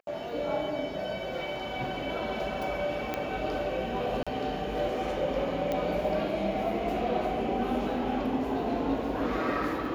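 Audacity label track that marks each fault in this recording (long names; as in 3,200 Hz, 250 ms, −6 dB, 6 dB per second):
3.140000	3.140000	click −17 dBFS
4.230000	4.270000	drop-out 36 ms
5.720000	5.720000	click −18 dBFS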